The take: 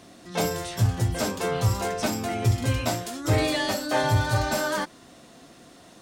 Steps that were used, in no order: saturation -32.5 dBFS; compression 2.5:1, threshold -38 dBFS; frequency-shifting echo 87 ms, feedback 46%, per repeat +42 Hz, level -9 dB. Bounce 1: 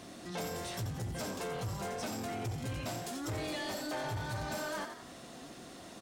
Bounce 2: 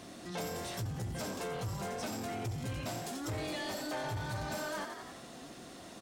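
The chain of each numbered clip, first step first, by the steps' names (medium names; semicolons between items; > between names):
compression > frequency-shifting echo > saturation; frequency-shifting echo > compression > saturation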